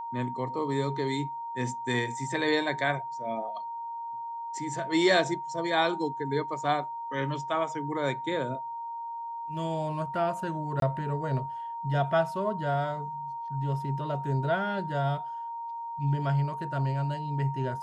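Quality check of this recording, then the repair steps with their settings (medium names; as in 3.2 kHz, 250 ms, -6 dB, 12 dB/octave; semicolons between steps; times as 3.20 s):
whine 930 Hz -34 dBFS
10.80–10.82 s: dropout 22 ms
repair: band-stop 930 Hz, Q 30; interpolate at 10.80 s, 22 ms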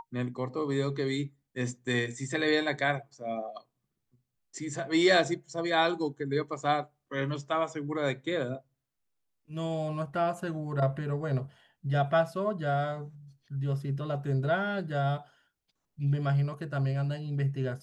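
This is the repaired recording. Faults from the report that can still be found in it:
nothing left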